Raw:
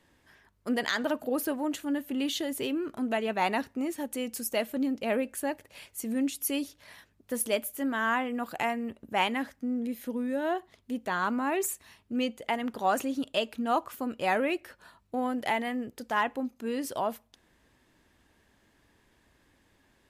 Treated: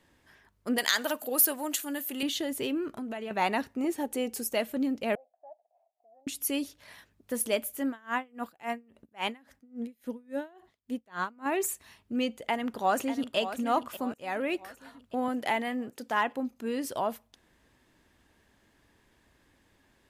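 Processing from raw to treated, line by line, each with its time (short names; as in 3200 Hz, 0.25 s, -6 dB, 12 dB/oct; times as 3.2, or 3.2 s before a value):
0.78–2.23 RIAA curve recording
2.88–3.31 compressor, threshold -33 dBFS
3.84–4.49 small resonant body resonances 420/780 Hz, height 10 dB, ringing for 30 ms
5.15–6.27 Butterworth band-pass 700 Hz, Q 6.9
7.88–11.46 dB-linear tremolo 3.6 Hz, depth 29 dB
12.3–13.37 echo throw 0.59 s, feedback 50%, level -11 dB
14.14–14.58 fade in, from -22.5 dB
15.28–16.37 HPF 140 Hz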